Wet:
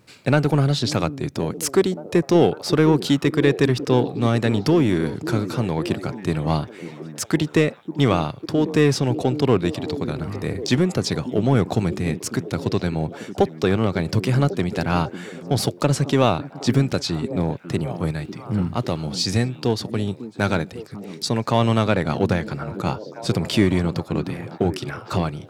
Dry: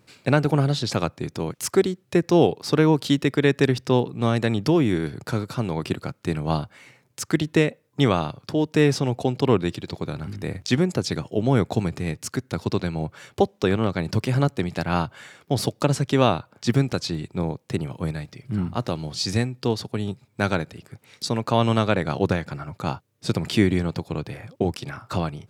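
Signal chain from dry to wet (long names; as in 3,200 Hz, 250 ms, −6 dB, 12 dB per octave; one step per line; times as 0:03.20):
in parallel at −4 dB: hard clipping −19 dBFS, distortion −7 dB
on the sum: echo through a band-pass that steps 548 ms, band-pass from 250 Hz, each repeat 0.7 octaves, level −9 dB
level −1 dB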